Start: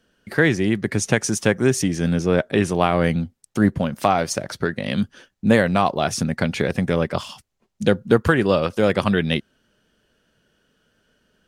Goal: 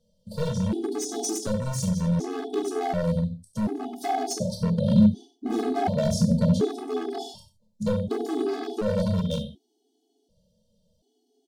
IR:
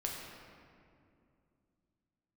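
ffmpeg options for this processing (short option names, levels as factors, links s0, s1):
-filter_complex "[0:a]highshelf=f=7900:g=-2.5,asplit=2[s0][s1];[s1]adelay=28,volume=0.316[s2];[s0][s2]amix=inputs=2:normalize=0,aecho=1:1:93:0.237,volume=3.16,asoftclip=hard,volume=0.316,asuperstop=centerf=1700:order=12:qfactor=0.66[s3];[1:a]atrim=start_sample=2205,atrim=end_sample=3528[s4];[s3][s4]afir=irnorm=-1:irlink=0,alimiter=limit=0.211:level=0:latency=1:release=97,aeval=exprs='0.141*(abs(mod(val(0)/0.141+3,4)-2)-1)':c=same,asettb=1/sr,asplit=3[s5][s6][s7];[s5]atrim=end=4.404[s8];[s6]atrim=start=4.4:end=6.65,asetpts=PTS-STARTPTS,afade=t=in:d=0.004:c=qsin,afade=t=out:st=2.246:d=0.004:c=qsin,equalizer=f=220:t=o:w=1.8:g=8.5[s9];[s7]atrim=start=6.646[s10];[s8][s9]acrossfade=d=0.004:c1=hsin:c2=qsin[s11];[s11][s10]acrossfade=d=0.004:c1=qsin:c2=hsin,afftfilt=real='re*gt(sin(2*PI*0.68*pts/sr)*(1-2*mod(floor(b*sr/1024/220),2)),0)':imag='im*gt(sin(2*PI*0.68*pts/sr)*(1-2*mod(floor(b*sr/1024/220),2)),0)':win_size=1024:overlap=0.75"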